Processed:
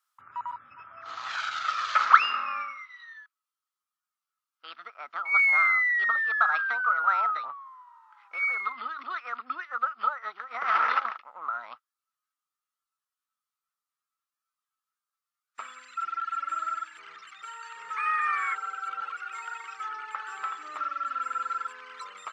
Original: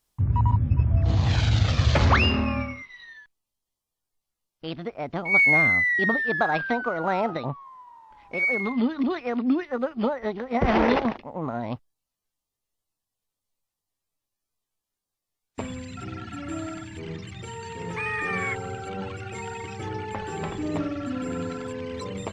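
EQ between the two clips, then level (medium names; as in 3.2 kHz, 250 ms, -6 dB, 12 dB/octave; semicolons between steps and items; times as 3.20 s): resonant high-pass 1.3 kHz, resonance Q 12; -7.0 dB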